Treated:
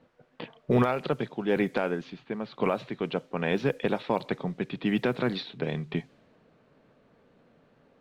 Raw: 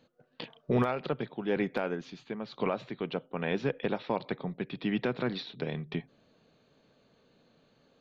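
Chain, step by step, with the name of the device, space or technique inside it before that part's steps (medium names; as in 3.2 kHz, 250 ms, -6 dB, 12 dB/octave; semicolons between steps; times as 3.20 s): cassette deck with a dynamic noise filter (white noise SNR 32 dB; level-controlled noise filter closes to 1.7 kHz, open at -25 dBFS); trim +4 dB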